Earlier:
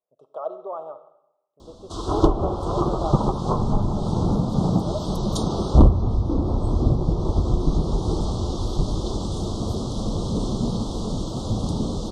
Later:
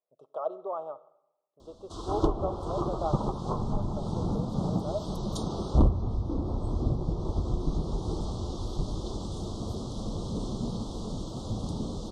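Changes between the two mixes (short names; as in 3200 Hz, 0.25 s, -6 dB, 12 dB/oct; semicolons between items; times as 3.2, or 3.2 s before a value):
speech: send -7.5 dB; background -8.5 dB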